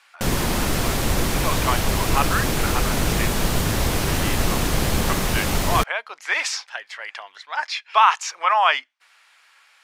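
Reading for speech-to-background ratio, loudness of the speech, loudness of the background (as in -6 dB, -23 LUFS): -1.5 dB, -24.0 LUFS, -22.5 LUFS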